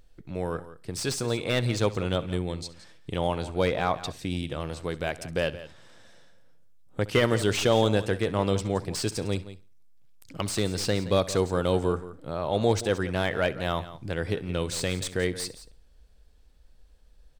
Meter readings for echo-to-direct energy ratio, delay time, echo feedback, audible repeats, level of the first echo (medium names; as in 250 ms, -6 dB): -13.5 dB, 66 ms, no regular repeats, 4, -19.0 dB